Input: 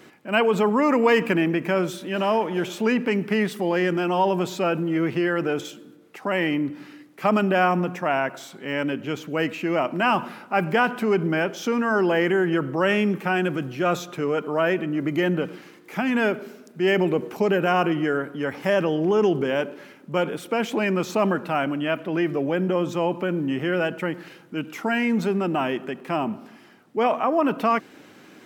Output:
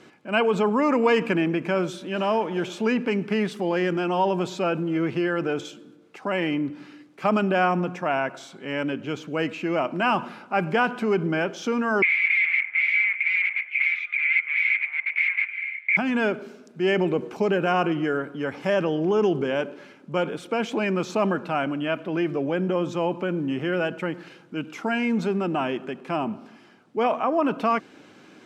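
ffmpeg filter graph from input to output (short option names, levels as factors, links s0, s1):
-filter_complex "[0:a]asettb=1/sr,asplit=3[s0][s1][s2];[s0]atrim=end=12.024[s3];[s1]atrim=start=12.02:end=15.97,asetpts=PTS-STARTPTS,afade=t=in:d=0.004:c=qsin,afade=t=out:st=3.946:d=0.004:c=qsin,acontrast=43,aeval=exprs='0.631*sin(PI/2*10*val(0)/0.631)':c=same,asuperpass=centerf=2200:order=4:qfactor=7.7[s4];[s2]atrim=start=15.966[s5];[s3][s4]acrossfade=d=0.004:c1=hsin:c2=qsin[s6];[s6][s5]acrossfade=d=0.004:c1=qsin:c2=hsin,lowpass=7700,bandreject=f=1900:w=13,volume=0.841"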